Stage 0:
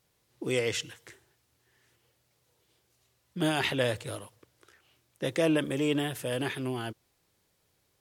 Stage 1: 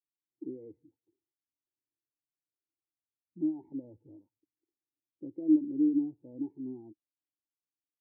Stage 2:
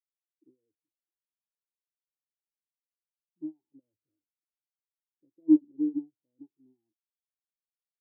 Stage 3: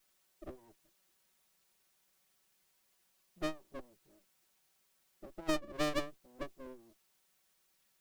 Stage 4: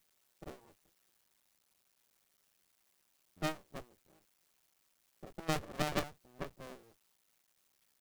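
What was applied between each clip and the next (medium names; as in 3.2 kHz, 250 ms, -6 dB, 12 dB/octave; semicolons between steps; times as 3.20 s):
peak limiter -20.5 dBFS, peak gain reduction 7.5 dB; cascade formant filter u; spectral contrast expander 1.5:1; trim +7.5 dB
upward expansion 2.5:1, over -45 dBFS; trim +5 dB
comb filter that takes the minimum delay 5.3 ms; compression 6:1, threshold -31 dBFS, peak gain reduction 12.5 dB; spectrum-flattening compressor 2:1; trim +4.5 dB
cycle switcher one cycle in 2, muted; trim +2.5 dB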